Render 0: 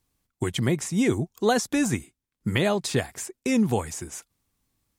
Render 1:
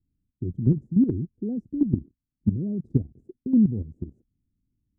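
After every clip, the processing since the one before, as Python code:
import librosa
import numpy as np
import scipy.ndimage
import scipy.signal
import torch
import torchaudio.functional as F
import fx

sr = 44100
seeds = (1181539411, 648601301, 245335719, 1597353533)

y = scipy.signal.sosfilt(scipy.signal.cheby2(4, 60, 1000.0, 'lowpass', fs=sr, output='sos'), x)
y = fx.level_steps(y, sr, step_db=12)
y = y * librosa.db_to_amplitude(8.5)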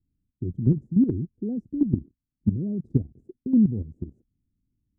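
y = x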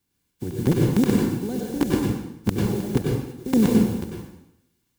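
y = fx.spec_flatten(x, sr, power=0.43)
y = fx.notch_comb(y, sr, f0_hz=640.0)
y = fx.rev_plate(y, sr, seeds[0], rt60_s=0.81, hf_ratio=0.95, predelay_ms=85, drr_db=-2.0)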